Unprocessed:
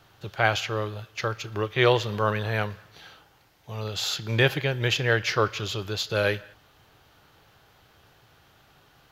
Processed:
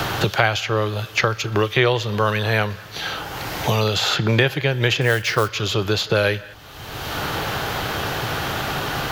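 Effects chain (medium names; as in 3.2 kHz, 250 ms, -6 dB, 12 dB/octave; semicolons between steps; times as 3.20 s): 5.01–5.49 s: short-mantissa float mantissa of 2-bit; three bands compressed up and down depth 100%; trim +6.5 dB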